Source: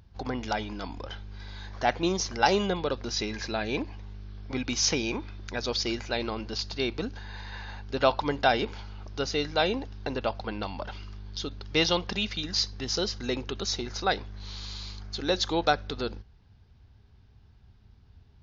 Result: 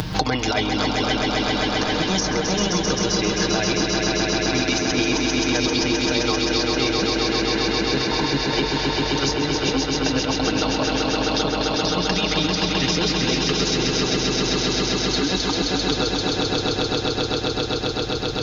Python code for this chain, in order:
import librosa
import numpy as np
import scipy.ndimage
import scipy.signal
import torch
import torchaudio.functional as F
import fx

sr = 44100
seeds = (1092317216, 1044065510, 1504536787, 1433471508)

p1 = x + 0.67 * np.pad(x, (int(6.5 * sr / 1000.0), 0))[:len(x)]
p2 = fx.over_compress(p1, sr, threshold_db=-29.0, ratio=-0.5)
p3 = p2 + fx.echo_swell(p2, sr, ms=131, loudest=5, wet_db=-5.0, dry=0)
p4 = fx.band_squash(p3, sr, depth_pct=100)
y = p4 * 10.0 ** (4.5 / 20.0)